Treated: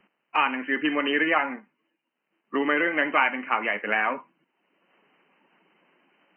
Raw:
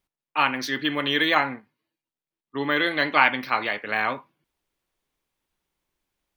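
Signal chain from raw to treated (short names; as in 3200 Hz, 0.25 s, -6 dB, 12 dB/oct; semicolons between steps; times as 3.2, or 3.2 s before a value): bin magnitudes rounded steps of 15 dB; brick-wall FIR band-pass 160–3100 Hz; three-band squash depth 70%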